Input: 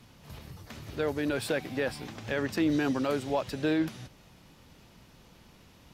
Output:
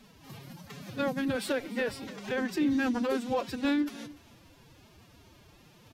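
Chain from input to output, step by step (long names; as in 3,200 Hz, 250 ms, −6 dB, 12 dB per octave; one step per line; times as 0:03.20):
phase-vocoder pitch shift with formants kept +10.5 semitones
single-tap delay 293 ms −19.5 dB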